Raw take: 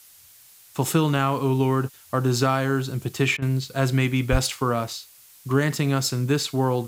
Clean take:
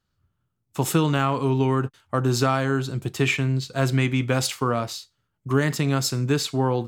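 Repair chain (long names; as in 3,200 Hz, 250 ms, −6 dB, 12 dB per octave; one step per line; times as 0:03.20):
0:04.31–0:04.43: high-pass filter 140 Hz 24 dB per octave
repair the gap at 0:03.37, 50 ms
broadband denoise 23 dB, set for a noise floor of −51 dBFS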